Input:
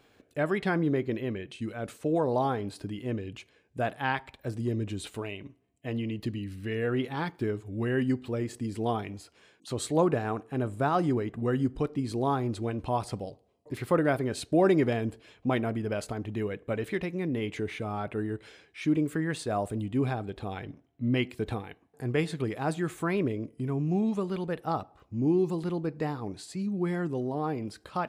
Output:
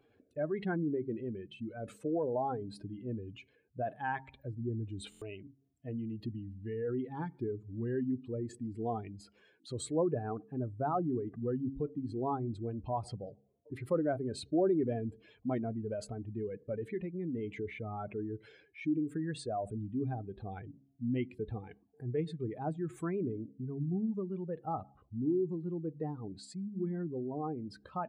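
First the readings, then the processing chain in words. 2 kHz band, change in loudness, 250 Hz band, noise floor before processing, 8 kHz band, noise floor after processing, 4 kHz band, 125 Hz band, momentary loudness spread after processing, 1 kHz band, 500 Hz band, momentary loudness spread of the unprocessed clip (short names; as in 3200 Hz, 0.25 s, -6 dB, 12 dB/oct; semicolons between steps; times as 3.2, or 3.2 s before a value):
-12.5 dB, -6.5 dB, -6.0 dB, -65 dBFS, -8.0 dB, -70 dBFS, -10.5 dB, -7.0 dB, 12 LU, -7.0 dB, -6.0 dB, 11 LU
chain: spectral contrast raised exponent 1.9; de-hum 68.1 Hz, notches 4; stuck buffer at 5.1, samples 1024, times 4; gain -6 dB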